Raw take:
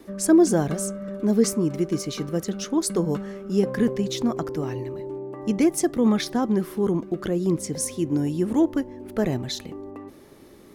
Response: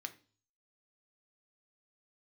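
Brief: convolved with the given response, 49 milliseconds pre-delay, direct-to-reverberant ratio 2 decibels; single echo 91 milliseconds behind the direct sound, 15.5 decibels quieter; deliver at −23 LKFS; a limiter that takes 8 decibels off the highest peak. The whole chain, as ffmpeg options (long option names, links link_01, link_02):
-filter_complex "[0:a]alimiter=limit=-15.5dB:level=0:latency=1,aecho=1:1:91:0.168,asplit=2[link_01][link_02];[1:a]atrim=start_sample=2205,adelay=49[link_03];[link_02][link_03]afir=irnorm=-1:irlink=0,volume=0dB[link_04];[link_01][link_04]amix=inputs=2:normalize=0,volume=2dB"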